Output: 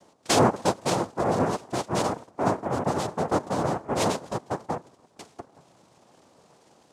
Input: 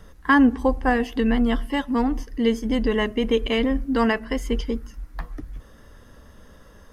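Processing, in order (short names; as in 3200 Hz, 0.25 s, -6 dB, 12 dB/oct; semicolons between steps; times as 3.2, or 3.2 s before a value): elliptic low-pass 1400 Hz; noise vocoder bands 2; gain -3.5 dB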